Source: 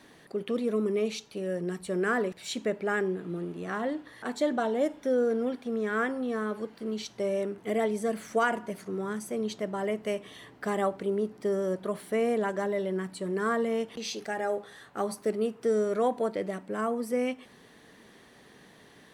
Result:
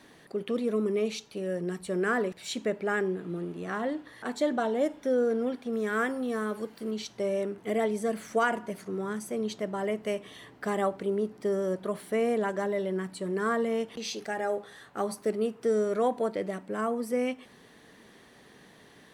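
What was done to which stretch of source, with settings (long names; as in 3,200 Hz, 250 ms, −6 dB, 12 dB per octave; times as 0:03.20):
0:05.73–0:06.91: high-shelf EQ 7,600 Hz +12 dB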